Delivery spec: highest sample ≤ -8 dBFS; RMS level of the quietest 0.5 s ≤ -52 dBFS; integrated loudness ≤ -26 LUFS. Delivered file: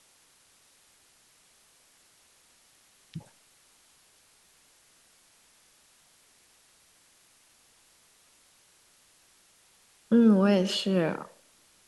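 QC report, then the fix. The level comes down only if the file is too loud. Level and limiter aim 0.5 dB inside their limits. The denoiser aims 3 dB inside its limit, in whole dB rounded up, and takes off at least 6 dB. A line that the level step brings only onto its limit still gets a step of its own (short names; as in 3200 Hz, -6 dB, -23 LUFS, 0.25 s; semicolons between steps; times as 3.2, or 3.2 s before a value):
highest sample -11.0 dBFS: OK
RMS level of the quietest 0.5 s -62 dBFS: OK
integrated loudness -24.5 LUFS: fail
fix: gain -2 dB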